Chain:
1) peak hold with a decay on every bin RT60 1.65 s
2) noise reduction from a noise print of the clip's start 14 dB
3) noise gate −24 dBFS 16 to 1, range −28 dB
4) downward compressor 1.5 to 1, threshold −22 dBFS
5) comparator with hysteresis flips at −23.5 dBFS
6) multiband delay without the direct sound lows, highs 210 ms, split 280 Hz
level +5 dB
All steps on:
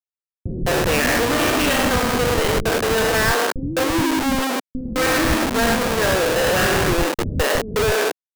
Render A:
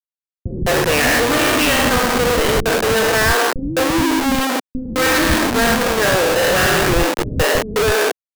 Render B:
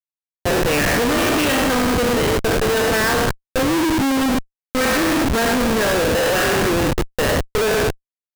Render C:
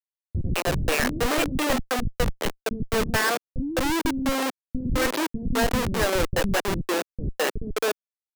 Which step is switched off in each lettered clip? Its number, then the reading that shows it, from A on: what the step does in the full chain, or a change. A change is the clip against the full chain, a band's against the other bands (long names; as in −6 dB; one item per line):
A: 4, change in integrated loudness +3.5 LU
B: 6, echo-to-direct ratio 21.0 dB to none audible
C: 1, 125 Hz band +3.0 dB